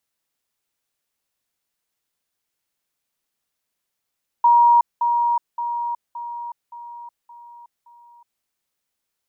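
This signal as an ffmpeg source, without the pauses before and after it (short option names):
-f lavfi -i "aevalsrc='pow(10,(-10-6*floor(t/0.57))/20)*sin(2*PI*949*t)*clip(min(mod(t,0.57),0.37-mod(t,0.57))/0.005,0,1)':d=3.99:s=44100"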